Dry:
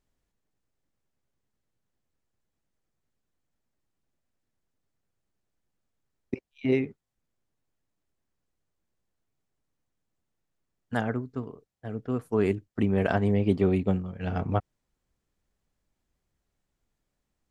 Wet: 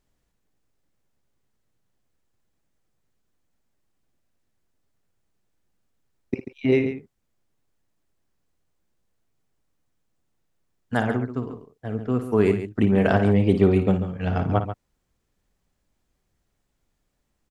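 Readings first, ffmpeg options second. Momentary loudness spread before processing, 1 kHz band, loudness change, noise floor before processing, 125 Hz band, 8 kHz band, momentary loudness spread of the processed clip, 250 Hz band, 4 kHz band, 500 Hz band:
14 LU, +5.5 dB, +5.5 dB, -82 dBFS, +5.5 dB, no reading, 15 LU, +5.5 dB, +5.5 dB, +6.0 dB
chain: -af "aecho=1:1:56|139:0.299|0.282,volume=1.78"

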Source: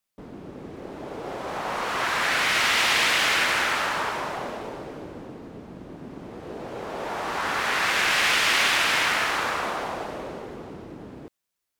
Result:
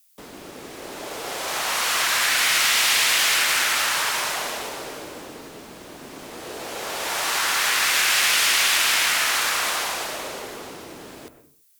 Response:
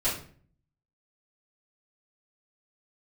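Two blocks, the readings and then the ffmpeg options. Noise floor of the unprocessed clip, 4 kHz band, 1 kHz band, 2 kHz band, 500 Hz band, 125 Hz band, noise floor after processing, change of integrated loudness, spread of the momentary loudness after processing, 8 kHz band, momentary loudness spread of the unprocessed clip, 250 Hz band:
-82 dBFS, +5.0 dB, -0.5 dB, +1.5 dB, -2.0 dB, -6.0 dB, -51 dBFS, +3.5 dB, 21 LU, +10.5 dB, 22 LU, -4.0 dB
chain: -filter_complex "[0:a]acrossover=split=120|280|1500[s0][s1][s2][s3];[s0]acompressor=threshold=0.00141:ratio=4[s4];[s1]acompressor=threshold=0.002:ratio=4[s5];[s2]acompressor=threshold=0.02:ratio=4[s6];[s3]acompressor=threshold=0.02:ratio=4[s7];[s4][s5][s6][s7]amix=inputs=4:normalize=0,crystalizer=i=9.5:c=0,asplit=2[s8][s9];[s9]lowpass=2400[s10];[1:a]atrim=start_sample=2205,afade=t=out:st=0.31:d=0.01,atrim=end_sample=14112,adelay=98[s11];[s10][s11]afir=irnorm=-1:irlink=0,volume=0.106[s12];[s8][s12]amix=inputs=2:normalize=0"

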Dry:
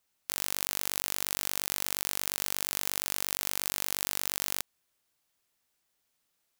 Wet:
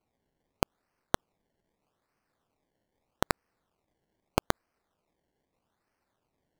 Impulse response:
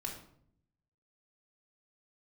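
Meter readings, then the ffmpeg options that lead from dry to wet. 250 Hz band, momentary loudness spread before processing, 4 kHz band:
+7.5 dB, 2 LU, -9.5 dB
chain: -af "acrusher=samples=24:mix=1:aa=0.000001:lfo=1:lforange=24:lforate=0.8,volume=0.75"

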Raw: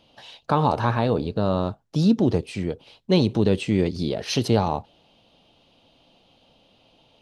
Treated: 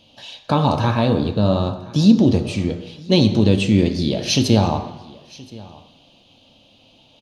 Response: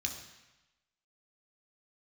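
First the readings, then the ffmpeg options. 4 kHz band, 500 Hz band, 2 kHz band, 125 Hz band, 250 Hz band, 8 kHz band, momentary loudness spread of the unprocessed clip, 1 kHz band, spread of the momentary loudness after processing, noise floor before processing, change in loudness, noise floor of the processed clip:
+8.0 dB, +2.5 dB, +4.5 dB, +6.0 dB, +6.5 dB, +9.0 dB, 10 LU, +1.5 dB, 12 LU, -61 dBFS, +5.5 dB, -54 dBFS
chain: -filter_complex "[0:a]aecho=1:1:1023:0.0794,asplit=2[s0][s1];[1:a]atrim=start_sample=2205,lowshelf=f=61:g=-11.5[s2];[s1][s2]afir=irnorm=-1:irlink=0,volume=0.841[s3];[s0][s3]amix=inputs=2:normalize=0,volume=1.12"

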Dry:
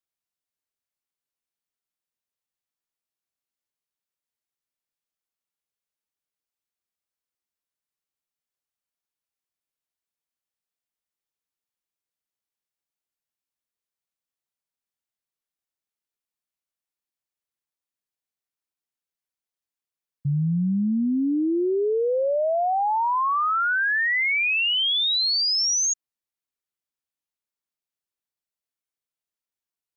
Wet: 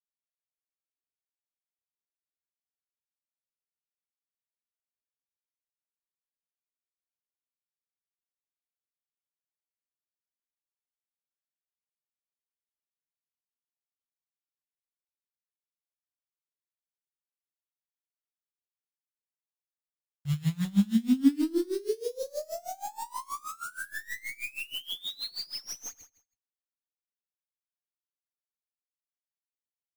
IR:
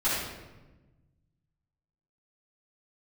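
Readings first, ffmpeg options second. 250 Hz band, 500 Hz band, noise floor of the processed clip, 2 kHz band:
-3.0 dB, -11.5 dB, under -85 dBFS, -17.5 dB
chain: -filter_complex "[0:a]aemphasis=mode=reproduction:type=bsi,acrusher=bits=6:dc=4:mix=0:aa=0.000001,acrossover=split=390|4100[s0][s1][s2];[s0]acompressor=threshold=0.126:ratio=4[s3];[s1]acompressor=threshold=0.0251:ratio=4[s4];[s2]acompressor=threshold=0.02:ratio=4[s5];[s3][s4][s5]amix=inputs=3:normalize=0,flanger=delay=7.2:depth=8.3:regen=49:speed=0.97:shape=triangular,equalizer=f=280:w=5.4:g=7,aecho=1:1:81|162|243|324|405:0.447|0.174|0.0679|0.0265|0.0103,aeval=exprs='val(0)*pow(10,-23*(0.5-0.5*cos(2*PI*6.3*n/s))/20)':c=same"

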